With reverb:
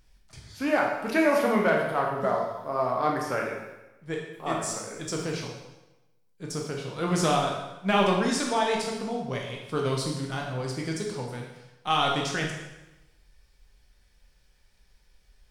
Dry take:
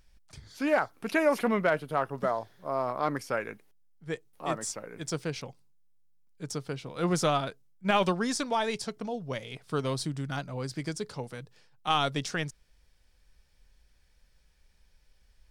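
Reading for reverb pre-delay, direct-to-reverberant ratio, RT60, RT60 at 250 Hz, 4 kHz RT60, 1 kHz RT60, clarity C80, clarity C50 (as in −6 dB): 6 ms, −1.0 dB, 1.0 s, 1.0 s, 0.95 s, 1.0 s, 5.5 dB, 3.5 dB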